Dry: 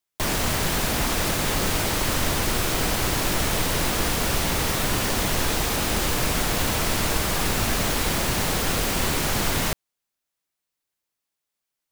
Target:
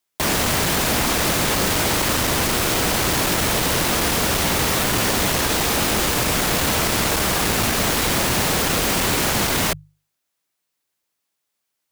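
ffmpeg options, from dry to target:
-af "volume=10,asoftclip=hard,volume=0.1,highpass=f=73:p=1,bandreject=f=50:t=h:w=6,bandreject=f=100:t=h:w=6,bandreject=f=150:t=h:w=6,volume=2"

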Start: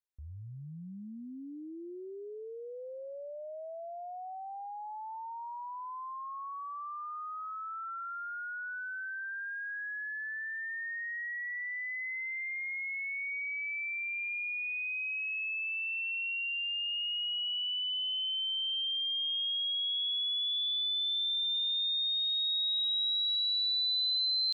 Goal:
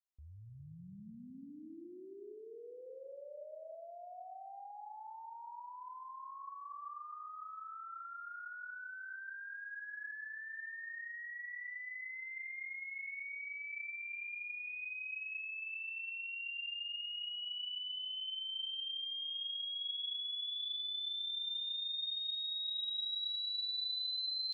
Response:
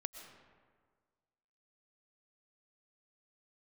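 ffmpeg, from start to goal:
-filter_complex "[1:a]atrim=start_sample=2205,asetrate=38808,aresample=44100[s0];[0:a][s0]afir=irnorm=-1:irlink=0,volume=0.501"

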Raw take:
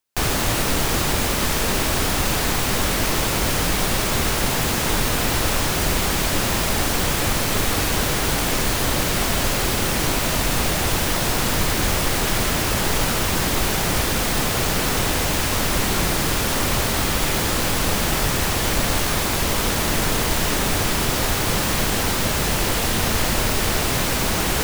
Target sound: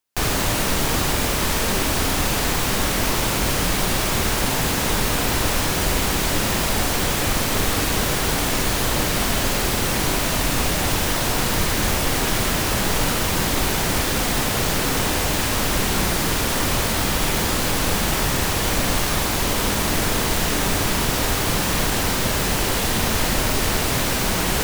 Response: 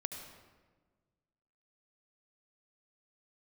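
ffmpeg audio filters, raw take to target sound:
-filter_complex "[1:a]atrim=start_sample=2205,atrim=end_sample=4410,asetrate=70560,aresample=44100[s0];[0:a][s0]afir=irnorm=-1:irlink=0,volume=1.88"

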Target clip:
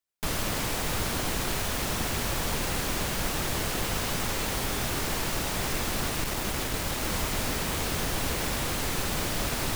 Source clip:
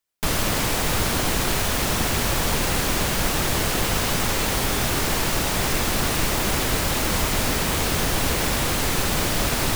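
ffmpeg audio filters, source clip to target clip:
-filter_complex "[0:a]asettb=1/sr,asplit=3[s0][s1][s2];[s0]atrim=end=6.104[s3];[s1]atrim=start=6.1:end=7.02,asetpts=PTS-STARTPTS,afade=t=in:d=0.004:c=qsin,afade=t=out:st=0.916:d=0.004:c=qsin,aeval=exprs='clip(val(0),-1,0.0841)':c=same[s4];[s2]atrim=start=7.016[s5];[s3][s4]acrossfade=d=0.004:c1=hsin:c2=qsin[s6];[s6][s5]acrossfade=d=0.004:c1=qsin:c2=hsin,volume=0.447"

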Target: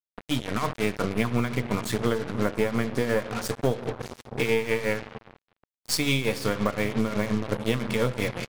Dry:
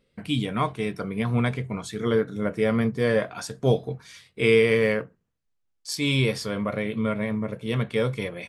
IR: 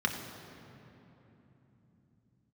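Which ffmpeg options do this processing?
-filter_complex "[0:a]aeval=exprs='if(lt(val(0),0),0.447*val(0),val(0))':c=same,tremolo=f=5.7:d=0.78,dynaudnorm=f=430:g=3:m=3.55,highshelf=f=4000:g=2.5,asplit=2[s0][s1];[s1]adelay=72,lowpass=f=2000:p=1,volume=0.106,asplit=2[s2][s3];[s3]adelay=72,lowpass=f=2000:p=1,volume=0.48,asplit=2[s4][s5];[s5]adelay=72,lowpass=f=2000:p=1,volume=0.48,asplit=2[s6][s7];[s7]adelay=72,lowpass=f=2000:p=1,volume=0.48[s8];[s0][s2][s4][s6][s8]amix=inputs=5:normalize=0,asplit=2[s9][s10];[1:a]atrim=start_sample=2205,lowshelf=f=100:g=-7[s11];[s10][s11]afir=irnorm=-1:irlink=0,volume=0.0944[s12];[s9][s12]amix=inputs=2:normalize=0,acrusher=bits=4:mix=0:aa=0.5,acompressor=threshold=0.0794:ratio=6,volume=1.19"

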